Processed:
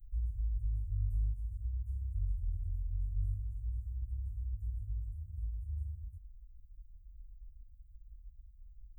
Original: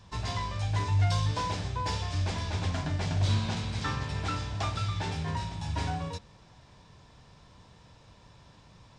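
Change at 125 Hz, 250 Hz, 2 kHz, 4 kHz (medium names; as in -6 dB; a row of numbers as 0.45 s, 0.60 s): -9.5 dB, under -30 dB, under -40 dB, under -40 dB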